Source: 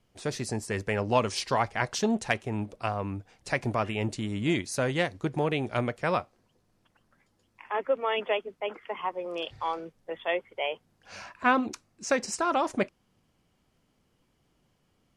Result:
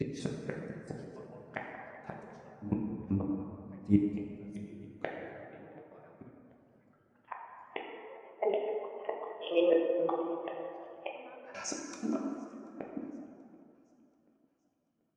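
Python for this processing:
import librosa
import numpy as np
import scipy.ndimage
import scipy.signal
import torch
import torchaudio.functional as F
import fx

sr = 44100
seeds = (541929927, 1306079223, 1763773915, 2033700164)

p1 = fx.block_reorder(x, sr, ms=97.0, group=5)
p2 = fx.level_steps(p1, sr, step_db=16)
p3 = p1 + (p2 * librosa.db_to_amplitude(-2.0))
p4 = fx.highpass(p3, sr, hz=110.0, slope=6)
p5 = fx.gate_flip(p4, sr, shuts_db=-20.0, range_db=-31)
p6 = fx.rider(p5, sr, range_db=4, speed_s=2.0)
p7 = p6 + fx.echo_feedback(p6, sr, ms=734, feedback_pct=59, wet_db=-20.5, dry=0)
p8 = fx.rev_plate(p7, sr, seeds[0], rt60_s=3.7, hf_ratio=0.45, predelay_ms=0, drr_db=-2.5)
y = fx.spectral_expand(p8, sr, expansion=1.5)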